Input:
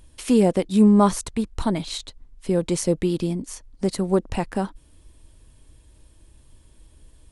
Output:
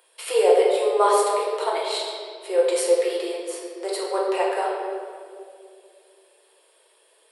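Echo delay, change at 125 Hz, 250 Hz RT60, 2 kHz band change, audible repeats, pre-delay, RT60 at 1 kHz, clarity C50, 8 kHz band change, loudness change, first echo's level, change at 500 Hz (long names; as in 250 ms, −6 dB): no echo audible, below −40 dB, 3.6 s, +5.5 dB, no echo audible, 6 ms, 1.9 s, 0.5 dB, +0.5 dB, −0.5 dB, no echo audible, +5.0 dB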